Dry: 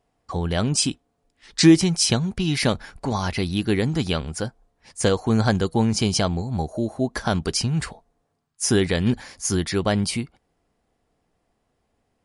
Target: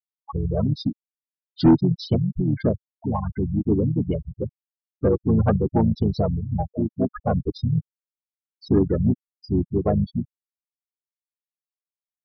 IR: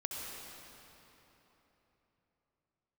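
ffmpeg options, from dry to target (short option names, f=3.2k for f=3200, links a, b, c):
-filter_complex "[0:a]afftfilt=real='re*gte(hypot(re,im),0.251)':imag='im*gte(hypot(re,im),0.251)':win_size=1024:overlap=0.75,asplit=3[a][b][c];[b]asetrate=33038,aresample=44100,atempo=1.33484,volume=-3dB[d];[c]asetrate=37084,aresample=44100,atempo=1.18921,volume=-17dB[e];[a][d][e]amix=inputs=3:normalize=0,highshelf=f=1.5k:t=q:w=1.5:g=-10,aresample=11025,asoftclip=type=tanh:threshold=-8dB,aresample=44100"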